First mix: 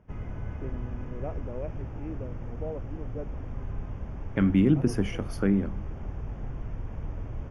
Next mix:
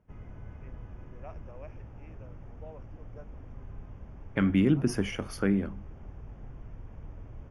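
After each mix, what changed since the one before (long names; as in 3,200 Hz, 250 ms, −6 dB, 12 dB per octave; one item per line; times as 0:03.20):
first voice: add high-pass filter 1,000 Hz 12 dB per octave
second voice: add tilt shelving filter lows −3 dB, about 670 Hz
background −9.0 dB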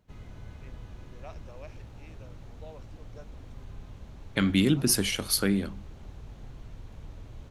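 master: remove moving average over 11 samples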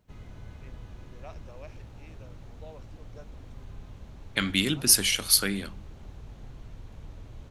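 second voice: add tilt shelving filter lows −6.5 dB, about 1,100 Hz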